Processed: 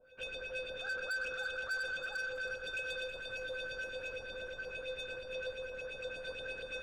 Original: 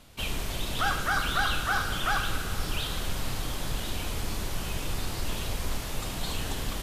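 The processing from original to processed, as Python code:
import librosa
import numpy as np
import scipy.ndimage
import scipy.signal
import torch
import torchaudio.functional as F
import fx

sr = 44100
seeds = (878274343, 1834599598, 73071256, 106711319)

p1 = fx.high_shelf(x, sr, hz=3700.0, db=6.0, at=(2.59, 3.94))
p2 = fx.over_compress(p1, sr, threshold_db=-30.0, ratio=-0.5)
p3 = p1 + (p2 * librosa.db_to_amplitude(0.5))
p4 = fx.filter_lfo_lowpass(p3, sr, shape='saw_up', hz=8.6, low_hz=600.0, high_hz=3500.0, q=2.8)
p5 = fx.comb_fb(p4, sr, f0_hz=510.0, decay_s=0.25, harmonics='odd', damping=0.0, mix_pct=100)
p6 = 10.0 ** (-40.0 / 20.0) * np.tanh(p5 / 10.0 ** (-40.0 / 20.0))
p7 = p6 + fx.echo_split(p6, sr, split_hz=1200.0, low_ms=207, high_ms=321, feedback_pct=52, wet_db=-11.5, dry=0)
y = p7 * librosa.db_to_amplitude(6.0)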